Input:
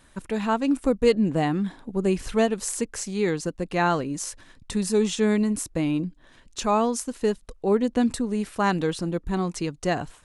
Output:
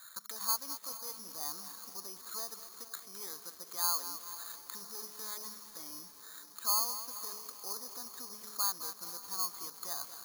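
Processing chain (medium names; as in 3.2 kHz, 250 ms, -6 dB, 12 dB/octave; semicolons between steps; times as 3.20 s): single-diode clipper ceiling -10 dBFS; band-stop 2.8 kHz, Q 5.8; de-hum 211.1 Hz, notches 3; compression 4:1, threshold -38 dBFS, peak gain reduction 19 dB; peak limiter -30 dBFS, peak gain reduction 7.5 dB; auto-wah 510–1400 Hz, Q 5.9, down, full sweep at -21.5 dBFS; distance through air 110 m; echo that smears into a reverb 520 ms, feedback 69%, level -14 dB; careless resampling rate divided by 8×, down filtered, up zero stuff; bit-crushed delay 212 ms, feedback 55%, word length 8-bit, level -10.5 dB; trim +8.5 dB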